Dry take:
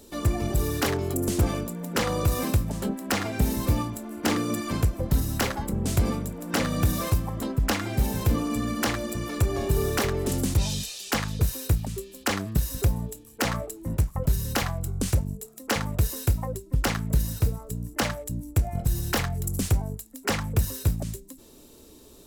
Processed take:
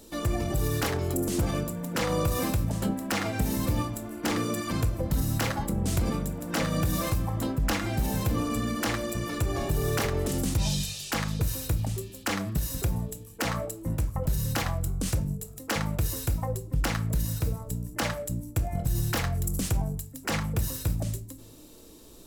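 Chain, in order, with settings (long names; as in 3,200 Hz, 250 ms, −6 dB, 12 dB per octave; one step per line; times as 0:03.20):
notch filter 410 Hz, Q 12
brickwall limiter −18.5 dBFS, peak gain reduction 5.5 dB
convolution reverb RT60 0.55 s, pre-delay 6 ms, DRR 10.5 dB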